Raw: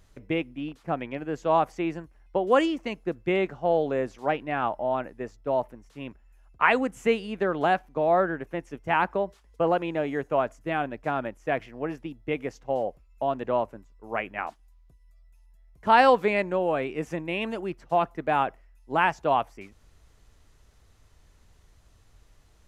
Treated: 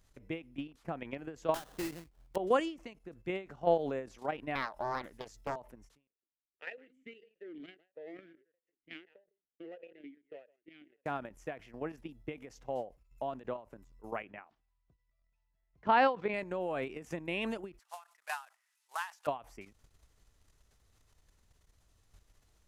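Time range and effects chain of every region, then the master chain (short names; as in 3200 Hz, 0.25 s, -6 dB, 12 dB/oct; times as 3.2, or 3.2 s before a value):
1.54–2.36 sample-rate reducer 2300 Hz, jitter 20% + hard clip -24 dBFS
4.55–5.56 high shelf 3100 Hz +12 dB + Doppler distortion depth 0.83 ms
6.07–11.06 echo 0.154 s -15.5 dB + power-law curve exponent 1.4 + vowel sweep e-i 1.6 Hz
14.24–16.34 HPF 81 Hz + air absorption 210 m
17.79–19.27 CVSD 64 kbps + HPF 990 Hz 24 dB/oct
whole clip: high shelf 4500 Hz +5.5 dB; level quantiser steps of 11 dB; ending taper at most 190 dB/s; gain -2 dB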